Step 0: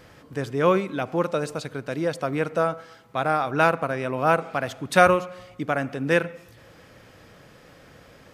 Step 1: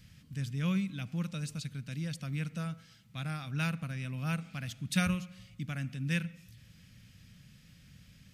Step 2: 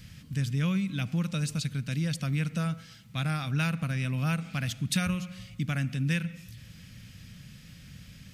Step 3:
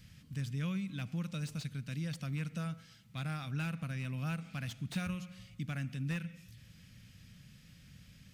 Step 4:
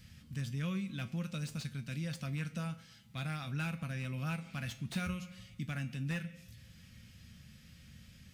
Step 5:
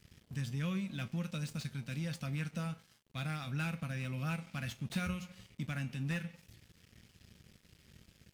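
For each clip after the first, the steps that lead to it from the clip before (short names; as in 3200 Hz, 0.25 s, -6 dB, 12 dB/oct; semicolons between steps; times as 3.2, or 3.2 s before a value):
EQ curve 200 Hz 0 dB, 370 Hz -25 dB, 930 Hz -25 dB, 2600 Hz -5 dB, 5900 Hz -3 dB; gain -1.5 dB
compressor 6:1, threshold -33 dBFS, peak gain reduction 9.5 dB; gain +8.5 dB
slew limiter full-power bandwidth 90 Hz; gain -8.5 dB
resonator 75 Hz, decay 0.24 s, harmonics odd, mix 70%; gain +8 dB
crossover distortion -57 dBFS; gain +1 dB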